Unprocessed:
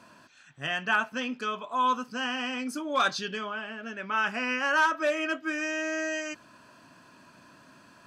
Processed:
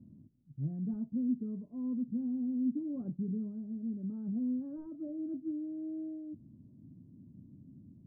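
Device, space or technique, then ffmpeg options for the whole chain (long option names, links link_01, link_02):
the neighbour's flat through the wall: -af "lowpass=frequency=240:width=0.5412,lowpass=frequency=240:width=1.3066,equalizer=frequency=96:width_type=o:width=0.68:gain=5,volume=7.5dB"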